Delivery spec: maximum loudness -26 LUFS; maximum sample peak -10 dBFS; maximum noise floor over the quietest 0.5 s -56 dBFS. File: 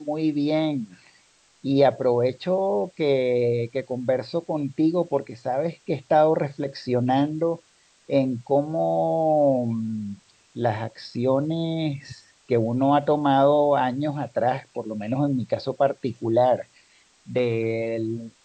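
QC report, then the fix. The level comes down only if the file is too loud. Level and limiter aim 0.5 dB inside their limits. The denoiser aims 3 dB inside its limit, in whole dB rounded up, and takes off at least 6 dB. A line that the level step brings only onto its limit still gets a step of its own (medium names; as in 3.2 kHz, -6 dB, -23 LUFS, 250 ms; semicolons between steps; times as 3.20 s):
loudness -24.0 LUFS: fail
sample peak -5.5 dBFS: fail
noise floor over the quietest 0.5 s -59 dBFS: pass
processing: trim -2.5 dB; peak limiter -10.5 dBFS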